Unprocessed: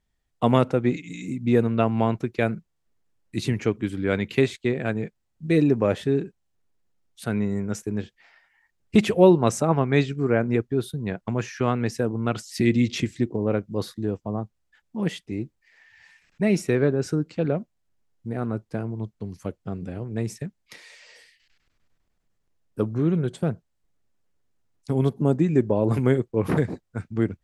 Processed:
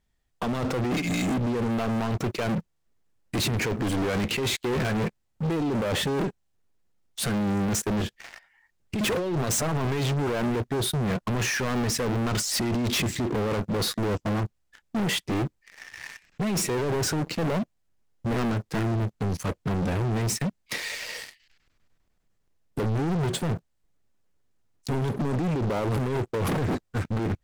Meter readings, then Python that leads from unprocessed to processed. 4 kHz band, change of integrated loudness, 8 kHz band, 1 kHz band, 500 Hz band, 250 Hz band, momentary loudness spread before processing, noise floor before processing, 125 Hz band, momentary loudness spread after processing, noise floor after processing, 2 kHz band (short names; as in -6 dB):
+7.5 dB, -3.0 dB, +9.5 dB, -0.5 dB, -5.5 dB, -3.5 dB, 14 LU, -74 dBFS, -1.5 dB, 8 LU, -73 dBFS, +1.5 dB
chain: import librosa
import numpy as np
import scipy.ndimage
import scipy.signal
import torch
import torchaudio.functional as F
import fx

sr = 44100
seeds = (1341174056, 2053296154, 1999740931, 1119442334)

y = fx.over_compress(x, sr, threshold_db=-27.0, ratio=-1.0)
y = fx.leveller(y, sr, passes=3)
y = 10.0 ** (-27.0 / 20.0) * np.tanh(y / 10.0 ** (-27.0 / 20.0))
y = y * librosa.db_to_amplitude(3.0)